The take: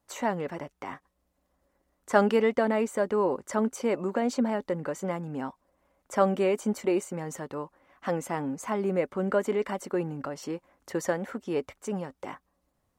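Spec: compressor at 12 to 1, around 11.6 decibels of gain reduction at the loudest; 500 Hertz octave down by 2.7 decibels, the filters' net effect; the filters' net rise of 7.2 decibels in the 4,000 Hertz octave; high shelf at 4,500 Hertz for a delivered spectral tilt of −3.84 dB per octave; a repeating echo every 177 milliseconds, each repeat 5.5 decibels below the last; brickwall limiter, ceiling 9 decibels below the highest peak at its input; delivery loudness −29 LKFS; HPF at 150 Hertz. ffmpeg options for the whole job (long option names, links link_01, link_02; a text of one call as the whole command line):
ffmpeg -i in.wav -af "highpass=150,equalizer=frequency=500:width_type=o:gain=-3.5,equalizer=frequency=4000:width_type=o:gain=6.5,highshelf=frequency=4500:gain=7,acompressor=threshold=-29dB:ratio=12,alimiter=level_in=1dB:limit=-24dB:level=0:latency=1,volume=-1dB,aecho=1:1:177|354|531|708|885|1062|1239:0.531|0.281|0.149|0.079|0.0419|0.0222|0.0118,volume=6.5dB" out.wav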